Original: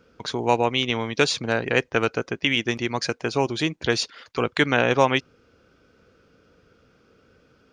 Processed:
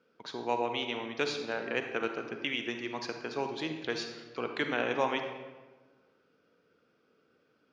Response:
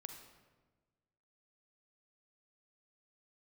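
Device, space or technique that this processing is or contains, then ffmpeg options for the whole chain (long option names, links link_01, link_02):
supermarket ceiling speaker: -filter_complex "[0:a]highpass=210,lowpass=5300[link_01];[1:a]atrim=start_sample=2205[link_02];[link_01][link_02]afir=irnorm=-1:irlink=0,volume=-6dB"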